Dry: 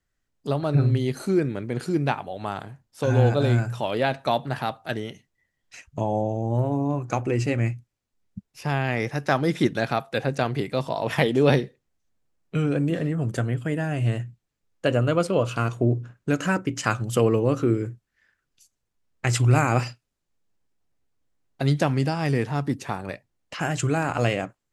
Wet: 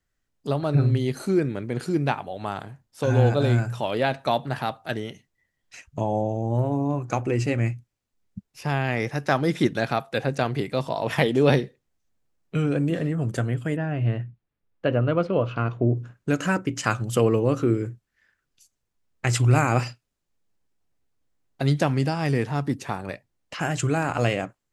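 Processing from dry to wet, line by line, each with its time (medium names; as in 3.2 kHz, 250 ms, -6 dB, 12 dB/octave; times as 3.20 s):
13.76–15.97 s: distance through air 290 m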